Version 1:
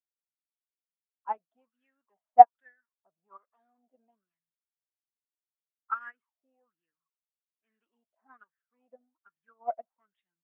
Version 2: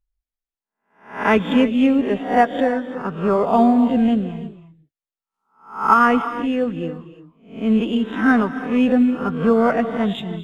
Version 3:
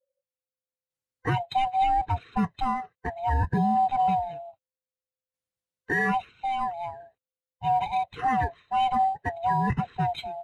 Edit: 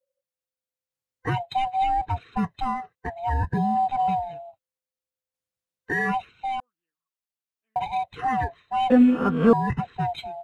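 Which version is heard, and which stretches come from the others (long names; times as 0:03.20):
3
0:06.60–0:07.76: punch in from 1
0:08.90–0:09.53: punch in from 2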